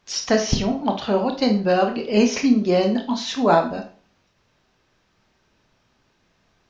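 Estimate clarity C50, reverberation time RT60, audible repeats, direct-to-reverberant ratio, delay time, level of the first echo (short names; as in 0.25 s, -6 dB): 10.0 dB, 0.40 s, none, 4.0 dB, none, none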